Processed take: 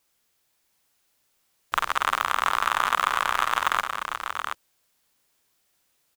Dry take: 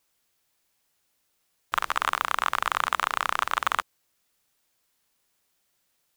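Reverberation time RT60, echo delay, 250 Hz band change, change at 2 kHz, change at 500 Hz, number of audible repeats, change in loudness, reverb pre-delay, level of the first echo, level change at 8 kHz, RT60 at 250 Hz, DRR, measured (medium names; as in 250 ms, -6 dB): no reverb, 51 ms, +2.5 dB, +2.5 dB, +2.5 dB, 3, +1.5 dB, no reverb, -7.5 dB, +2.5 dB, no reverb, no reverb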